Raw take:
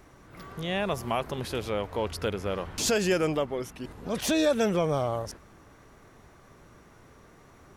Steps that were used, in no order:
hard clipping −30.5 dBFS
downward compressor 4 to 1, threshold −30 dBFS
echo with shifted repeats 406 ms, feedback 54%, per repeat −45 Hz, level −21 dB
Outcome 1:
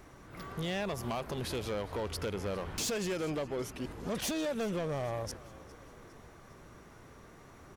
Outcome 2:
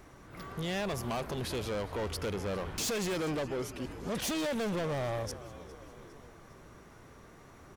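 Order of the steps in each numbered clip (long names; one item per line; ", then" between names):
downward compressor, then echo with shifted repeats, then hard clipping
echo with shifted repeats, then hard clipping, then downward compressor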